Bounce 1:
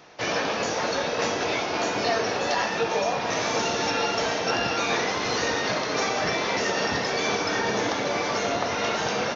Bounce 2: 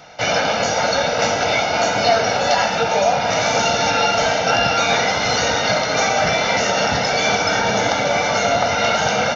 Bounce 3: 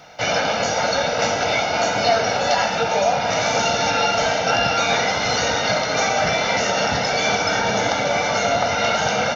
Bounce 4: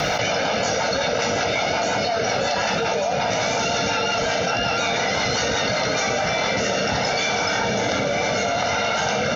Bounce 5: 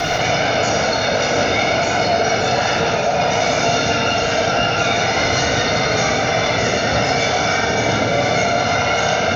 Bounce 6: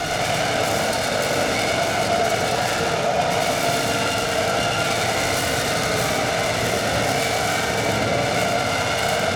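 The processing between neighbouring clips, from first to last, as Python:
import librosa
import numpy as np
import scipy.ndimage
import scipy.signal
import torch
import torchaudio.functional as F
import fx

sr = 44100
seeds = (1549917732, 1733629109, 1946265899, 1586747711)

y1 = x + 0.66 * np.pad(x, (int(1.4 * sr / 1000.0), 0))[:len(x)]
y1 = y1 * 10.0 ** (6.5 / 20.0)
y2 = fx.quant_dither(y1, sr, seeds[0], bits=12, dither='triangular')
y2 = y2 * 10.0 ** (-2.0 / 20.0)
y3 = fx.rotary_switch(y2, sr, hz=5.5, then_hz=0.7, switch_at_s=5.67)
y3 = fx.env_flatten(y3, sr, amount_pct=100)
y3 = y3 * 10.0 ** (-6.5 / 20.0)
y4 = fx.room_shoebox(y3, sr, seeds[1], volume_m3=3600.0, walls='mixed', distance_m=3.3)
y5 = fx.self_delay(y4, sr, depth_ms=0.17)
y5 = y5 + 10.0 ** (-6.0 / 20.0) * np.pad(y5, (int(106 * sr / 1000.0), 0))[:len(y5)]
y5 = y5 * 10.0 ** (-4.0 / 20.0)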